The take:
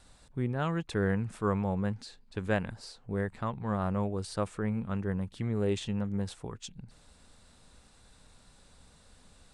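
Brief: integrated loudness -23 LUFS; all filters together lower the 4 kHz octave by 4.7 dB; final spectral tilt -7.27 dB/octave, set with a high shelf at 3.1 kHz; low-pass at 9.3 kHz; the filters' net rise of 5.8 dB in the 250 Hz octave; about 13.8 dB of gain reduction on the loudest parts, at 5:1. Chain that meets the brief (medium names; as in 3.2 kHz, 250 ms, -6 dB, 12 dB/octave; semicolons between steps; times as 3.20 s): low-pass 9.3 kHz; peaking EQ 250 Hz +8 dB; treble shelf 3.1 kHz +3.5 dB; peaking EQ 4 kHz -8.5 dB; compression 5:1, threshold -37 dBFS; trim +18.5 dB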